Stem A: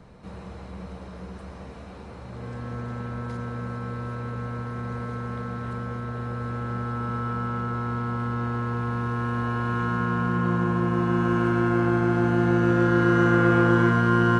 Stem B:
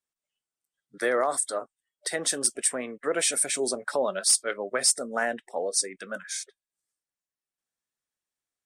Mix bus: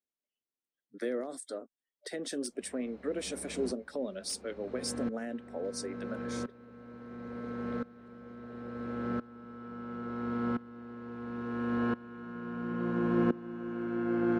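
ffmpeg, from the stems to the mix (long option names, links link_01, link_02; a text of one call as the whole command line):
ffmpeg -i stem1.wav -i stem2.wav -filter_complex "[0:a]acrossover=split=2800[link_01][link_02];[link_02]acompressor=threshold=-50dB:ratio=4:attack=1:release=60[link_03];[link_01][link_03]amix=inputs=2:normalize=0,lowshelf=frequency=420:gain=-7.5,aeval=exprs='val(0)*pow(10,-21*if(lt(mod(-0.73*n/s,1),2*abs(-0.73)/1000),1-mod(-0.73*n/s,1)/(2*abs(-0.73)/1000),(mod(-0.73*n/s,1)-2*abs(-0.73)/1000)/(1-2*abs(-0.73)/1000))/20)':channel_layout=same,adelay=2350,volume=-1dB[link_04];[1:a]acrossover=split=360|3000[link_05][link_06][link_07];[link_06]acompressor=threshold=-35dB:ratio=6[link_08];[link_05][link_08][link_07]amix=inputs=3:normalize=0,volume=-7.5dB[link_09];[link_04][link_09]amix=inputs=2:normalize=0,equalizer=frequency=125:width_type=o:width=1:gain=-7,equalizer=frequency=250:width_type=o:width=1:gain=11,equalizer=frequency=500:width_type=o:width=1:gain=5,equalizer=frequency=1000:width_type=o:width=1:gain=-6,equalizer=frequency=8000:width_type=o:width=1:gain=-7,equalizer=frequency=16000:width_type=o:width=1:gain=-10" out.wav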